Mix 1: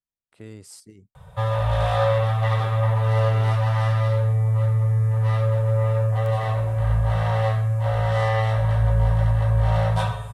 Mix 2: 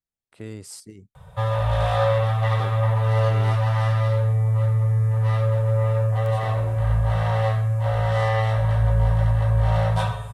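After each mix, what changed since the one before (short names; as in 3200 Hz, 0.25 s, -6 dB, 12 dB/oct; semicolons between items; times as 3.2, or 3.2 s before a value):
speech +4.5 dB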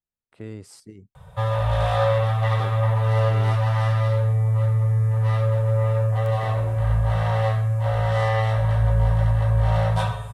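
speech: add high shelf 3800 Hz -10.5 dB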